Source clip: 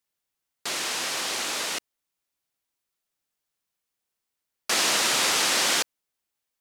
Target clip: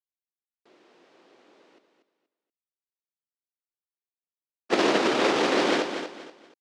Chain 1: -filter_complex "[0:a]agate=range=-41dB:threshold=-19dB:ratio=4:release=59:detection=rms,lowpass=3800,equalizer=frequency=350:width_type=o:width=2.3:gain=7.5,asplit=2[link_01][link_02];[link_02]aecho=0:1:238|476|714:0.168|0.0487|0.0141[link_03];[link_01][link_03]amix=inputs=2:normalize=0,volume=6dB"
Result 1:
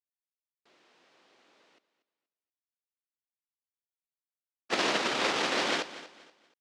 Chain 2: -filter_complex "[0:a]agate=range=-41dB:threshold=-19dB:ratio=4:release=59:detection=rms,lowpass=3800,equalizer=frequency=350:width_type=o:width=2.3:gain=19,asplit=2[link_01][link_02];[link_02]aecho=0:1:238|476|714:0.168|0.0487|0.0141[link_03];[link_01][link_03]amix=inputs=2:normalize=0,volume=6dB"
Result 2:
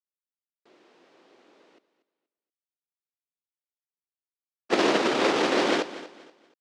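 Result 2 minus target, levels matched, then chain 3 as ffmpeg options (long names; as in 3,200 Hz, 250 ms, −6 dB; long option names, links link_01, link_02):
echo-to-direct −7 dB
-filter_complex "[0:a]agate=range=-41dB:threshold=-19dB:ratio=4:release=59:detection=rms,lowpass=3800,equalizer=frequency=350:width_type=o:width=2.3:gain=19,asplit=2[link_01][link_02];[link_02]aecho=0:1:238|476|714:0.376|0.109|0.0316[link_03];[link_01][link_03]amix=inputs=2:normalize=0,volume=6dB"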